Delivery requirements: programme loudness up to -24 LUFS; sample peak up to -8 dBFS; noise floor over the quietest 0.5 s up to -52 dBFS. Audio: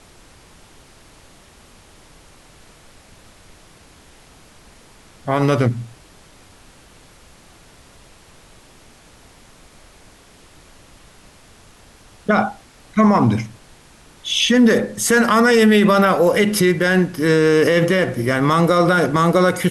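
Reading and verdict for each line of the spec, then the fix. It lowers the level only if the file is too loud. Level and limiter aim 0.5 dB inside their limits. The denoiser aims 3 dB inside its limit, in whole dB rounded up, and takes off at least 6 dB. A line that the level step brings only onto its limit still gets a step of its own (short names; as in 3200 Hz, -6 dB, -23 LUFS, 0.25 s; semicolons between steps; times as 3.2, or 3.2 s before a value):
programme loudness -16.0 LUFS: fail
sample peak -5.5 dBFS: fail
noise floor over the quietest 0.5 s -47 dBFS: fail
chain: gain -8.5 dB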